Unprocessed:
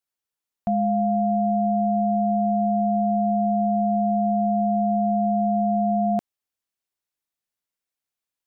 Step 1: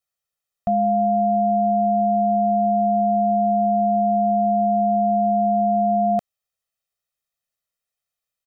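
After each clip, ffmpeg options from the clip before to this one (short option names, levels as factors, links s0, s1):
-af "aecho=1:1:1.6:0.79"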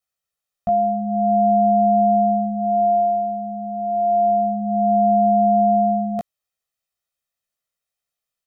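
-af "flanger=delay=16.5:depth=2.2:speed=0.28,volume=1.5"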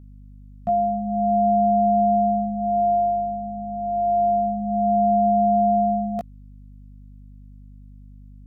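-af "aeval=exprs='val(0)+0.01*(sin(2*PI*50*n/s)+sin(2*PI*2*50*n/s)/2+sin(2*PI*3*50*n/s)/3+sin(2*PI*4*50*n/s)/4+sin(2*PI*5*50*n/s)/5)':c=same,volume=0.75"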